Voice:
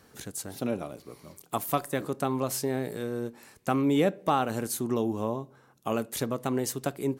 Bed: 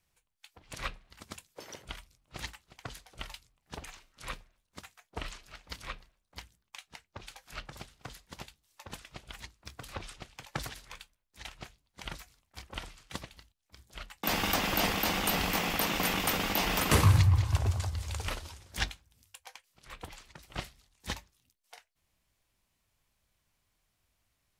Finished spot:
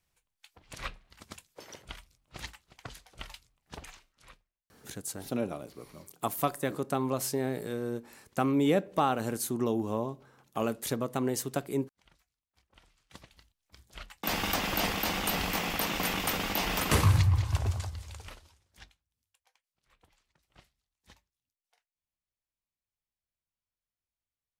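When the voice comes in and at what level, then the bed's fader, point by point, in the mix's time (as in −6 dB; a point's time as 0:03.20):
4.70 s, −1.5 dB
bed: 0:03.96 −1.5 dB
0:04.51 −23.5 dB
0:12.66 −23.5 dB
0:13.54 −1 dB
0:17.75 −1 dB
0:18.80 −21 dB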